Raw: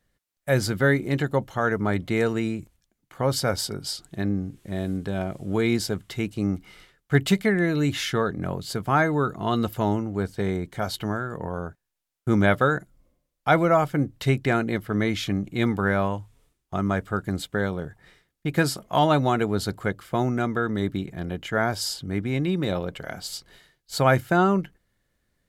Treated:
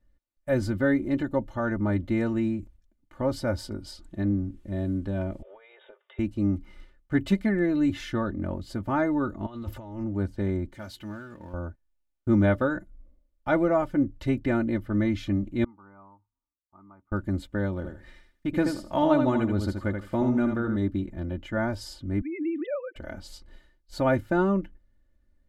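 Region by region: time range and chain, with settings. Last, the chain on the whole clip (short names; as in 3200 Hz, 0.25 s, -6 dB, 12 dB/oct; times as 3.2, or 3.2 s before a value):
5.42–6.19 brick-wall FIR band-pass 390–3800 Hz + compressor 10:1, threshold -39 dBFS
9.46–10.04 bell 210 Hz -7.5 dB 1.8 oct + negative-ratio compressor -36 dBFS + Doppler distortion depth 0.15 ms
10.74–11.54 G.711 law mismatch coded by mu + HPF 340 Hz 6 dB/oct + bell 650 Hz -10 dB 2.4 oct
15.64–17.12 LPF 1100 Hz 24 dB/oct + differentiator + comb 0.9 ms, depth 68%
17.76–20.76 feedback echo 79 ms, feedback 18%, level -6 dB + mismatched tape noise reduction encoder only
22.21–22.96 sine-wave speech + HPF 460 Hz
whole clip: tilt -3 dB/oct; comb 3.4 ms, depth 79%; gain -8 dB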